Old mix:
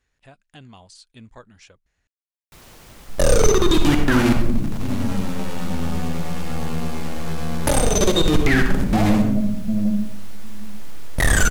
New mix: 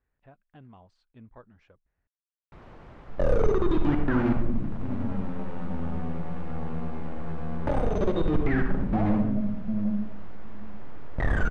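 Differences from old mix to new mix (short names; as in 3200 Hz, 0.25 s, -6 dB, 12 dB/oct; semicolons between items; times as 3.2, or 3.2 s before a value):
speech -5.5 dB; second sound -7.0 dB; master: add LPF 1400 Hz 12 dB/oct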